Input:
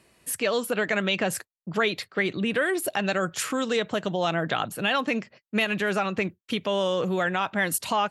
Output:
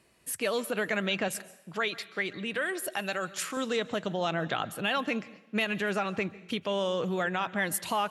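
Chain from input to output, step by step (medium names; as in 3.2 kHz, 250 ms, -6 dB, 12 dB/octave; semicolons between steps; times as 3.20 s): 1.28–3.57 s: bass shelf 480 Hz -7.5 dB; reverberation, pre-delay 126 ms, DRR 18 dB; trim -4.5 dB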